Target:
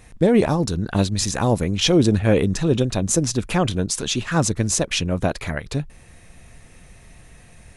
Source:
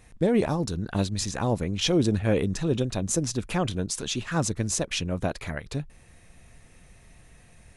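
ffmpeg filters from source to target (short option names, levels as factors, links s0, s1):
-filter_complex "[0:a]asettb=1/sr,asplit=3[s0][s1][s2];[s0]atrim=end=1.234[s3];[s1]atrim=start=1.23:end=1.76,asetpts=PTS-STARTPTS,afade=t=in:d=0.004:c=qsin,afade=t=out:st=0.526:d=0.004:c=qsin,highshelf=f=10000:g=10.5[s4];[s2]atrim=start=1.756[s5];[s3][s4]acrossfade=d=0.004:c1=hsin:c2=qsin[s6];[s6][s5]acrossfade=d=0.004:c1=qsin:c2=hsin,volume=2.11"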